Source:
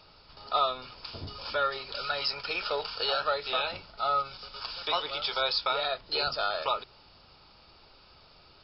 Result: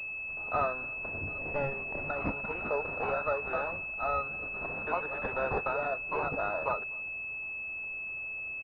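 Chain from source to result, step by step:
0:01.38–0:02.10: lower of the sound and its delayed copy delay 0.41 ms
far-end echo of a speakerphone 250 ms, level −25 dB
switching amplifier with a slow clock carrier 2,600 Hz

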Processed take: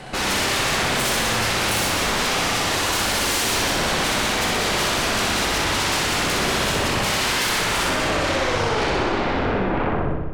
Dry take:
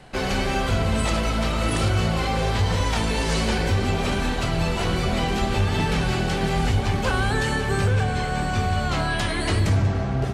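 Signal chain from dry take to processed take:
turntable brake at the end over 2.71 s
low-shelf EQ 140 Hz −7.5 dB
sine wavefolder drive 16 dB, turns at −12 dBFS
on a send: flutter between parallel walls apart 10.7 metres, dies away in 1.1 s
on the sum: level −9 dB

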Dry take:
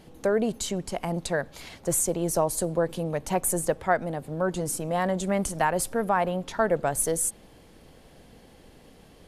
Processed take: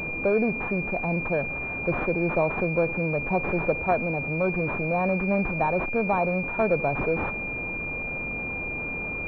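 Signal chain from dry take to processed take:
converter with a step at zero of −30.5 dBFS
switching amplifier with a slow clock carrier 2,400 Hz

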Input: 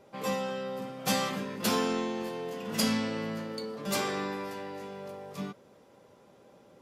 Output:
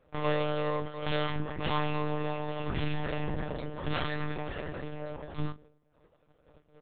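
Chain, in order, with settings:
noise gate −55 dBFS, range −13 dB
low shelf with overshoot 100 Hz −13.5 dB, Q 1.5
mains-hum notches 60/120/180/240/300/360 Hz
comb filter 5.7 ms, depth 71%
feedback echo with a low-pass in the loop 150 ms, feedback 42%, low-pass 1,100 Hz, level −20 dB
amplitude modulation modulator 39 Hz, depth 40%
tube saturation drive 35 dB, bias 0.6
reverb reduction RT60 0.7 s
ambience of single reflections 17 ms −7.5 dB, 42 ms −13.5 dB
one-pitch LPC vocoder at 8 kHz 150 Hz
level +9 dB

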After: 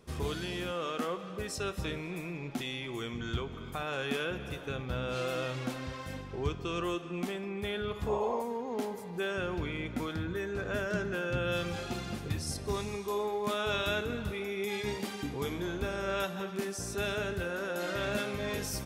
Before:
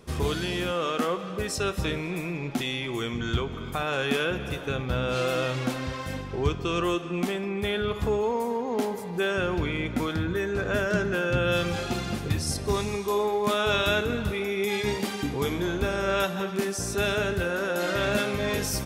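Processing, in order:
sound drawn into the spectrogram noise, 0:08.08–0:08.42, 350–1,100 Hz −28 dBFS
level −7.5 dB

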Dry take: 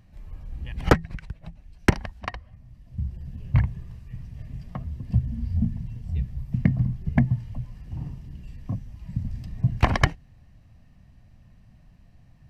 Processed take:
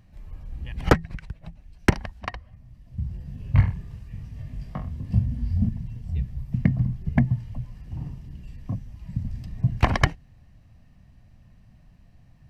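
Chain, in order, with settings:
0:03.02–0:05.69: reverse bouncing-ball delay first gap 20 ms, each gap 1.1×, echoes 5

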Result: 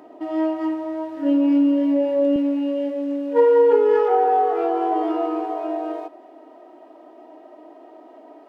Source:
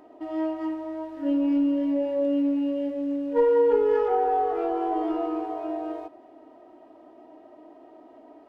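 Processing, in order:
high-pass filter 130 Hz 12 dB per octave, from 0:02.36 300 Hz
level +6 dB

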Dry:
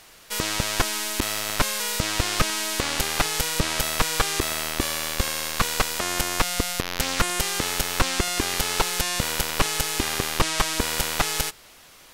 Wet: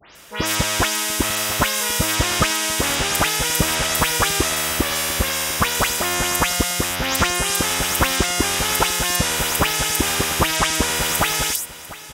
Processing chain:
every frequency bin delayed by itself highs late, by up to 150 ms
high-pass filter 44 Hz 24 dB per octave
notch filter 4,300 Hz, Q 7.6
single-tap delay 697 ms −17 dB
level +6 dB

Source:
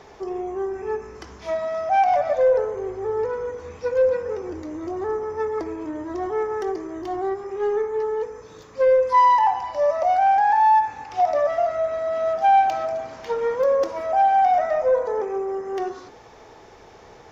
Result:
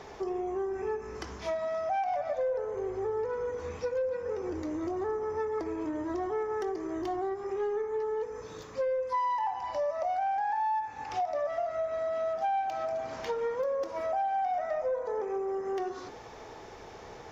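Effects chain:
downward compressor 4 to 1, threshold −31 dBFS, peak gain reduction 15.5 dB

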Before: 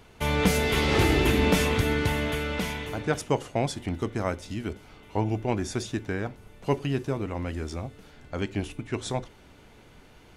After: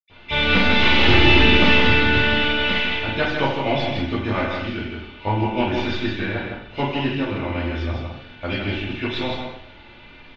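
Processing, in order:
stylus tracing distortion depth 0.15 ms
high-shelf EQ 2,200 Hz +12 dB
comb filter 3.4 ms, depth 34%
single-tap delay 160 ms −5 dB
convolution reverb RT60 0.70 s, pre-delay 77 ms
level −5 dB

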